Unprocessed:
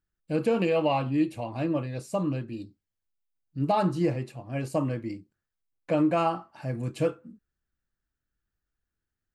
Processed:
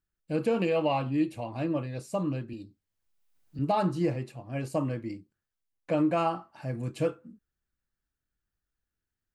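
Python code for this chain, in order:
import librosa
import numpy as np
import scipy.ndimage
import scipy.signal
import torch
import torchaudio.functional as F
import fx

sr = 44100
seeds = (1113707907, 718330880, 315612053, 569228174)

y = fx.band_squash(x, sr, depth_pct=70, at=(2.53, 3.59))
y = F.gain(torch.from_numpy(y), -2.0).numpy()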